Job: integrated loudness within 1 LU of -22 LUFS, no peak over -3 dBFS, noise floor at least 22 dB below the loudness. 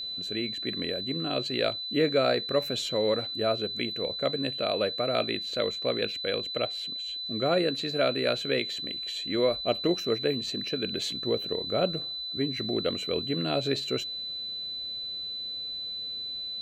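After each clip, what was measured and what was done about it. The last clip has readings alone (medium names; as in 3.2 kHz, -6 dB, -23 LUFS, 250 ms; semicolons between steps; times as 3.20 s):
steady tone 4 kHz; tone level -33 dBFS; loudness -29.0 LUFS; peak level -12.5 dBFS; loudness target -22.0 LUFS
-> band-stop 4 kHz, Q 30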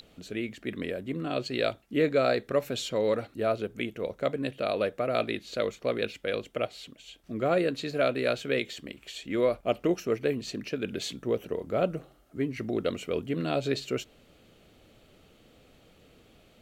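steady tone not found; loudness -30.5 LUFS; peak level -13.0 dBFS; loudness target -22.0 LUFS
-> trim +8.5 dB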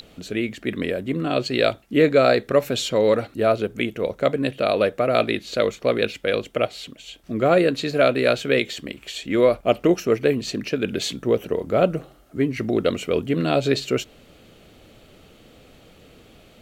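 loudness -22.0 LUFS; peak level -4.5 dBFS; noise floor -52 dBFS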